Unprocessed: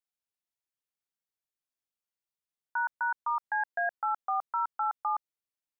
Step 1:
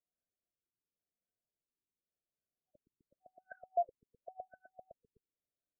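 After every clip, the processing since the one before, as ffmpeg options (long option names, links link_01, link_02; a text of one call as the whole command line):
ffmpeg -i in.wav -af "afftfilt=real='re*(1-between(b*sr/4096,750,1500))':imag='im*(1-between(b*sr/4096,750,1500))':win_size=4096:overlap=0.75,afftfilt=real='re*lt(b*sr/1024,430*pow(1600/430,0.5+0.5*sin(2*PI*0.91*pts/sr)))':imag='im*lt(b*sr/1024,430*pow(1600/430,0.5+0.5*sin(2*PI*0.91*pts/sr)))':win_size=1024:overlap=0.75,volume=4.5dB" out.wav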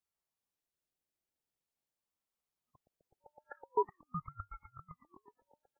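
ffmpeg -i in.wav -filter_complex "[0:a]asplit=2[link_01][link_02];[link_02]aecho=0:1:371|742|1113|1484:0.335|0.121|0.0434|0.0156[link_03];[link_01][link_03]amix=inputs=2:normalize=0,aeval=exprs='val(0)*sin(2*PI*400*n/s+400*0.65/0.44*sin(2*PI*0.44*n/s))':channel_layout=same,volume=4.5dB" out.wav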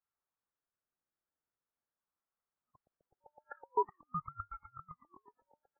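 ffmpeg -i in.wav -af "lowpass=frequency=1400:width_type=q:width=2.2,volume=-3dB" out.wav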